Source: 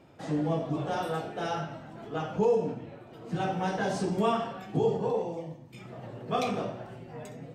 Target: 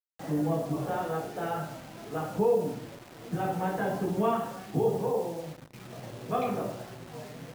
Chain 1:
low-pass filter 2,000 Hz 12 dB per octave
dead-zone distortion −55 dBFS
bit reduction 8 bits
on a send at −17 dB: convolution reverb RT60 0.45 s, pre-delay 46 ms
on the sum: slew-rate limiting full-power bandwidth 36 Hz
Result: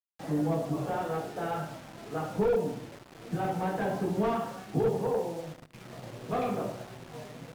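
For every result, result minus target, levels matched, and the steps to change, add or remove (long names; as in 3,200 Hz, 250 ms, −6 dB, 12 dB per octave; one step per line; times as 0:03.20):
slew-rate limiting: distortion +37 dB; dead-zone distortion: distortion +9 dB
change: slew-rate limiting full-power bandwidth 104.5 Hz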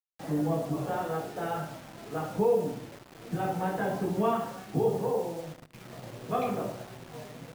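dead-zone distortion: distortion +9 dB
change: dead-zone distortion −64.5 dBFS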